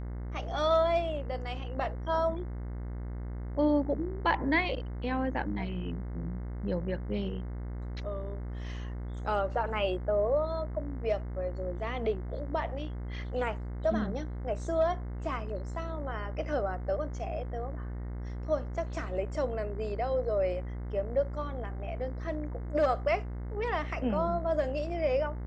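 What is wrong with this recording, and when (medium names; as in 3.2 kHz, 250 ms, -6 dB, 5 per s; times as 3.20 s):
buzz 60 Hz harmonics 36 -37 dBFS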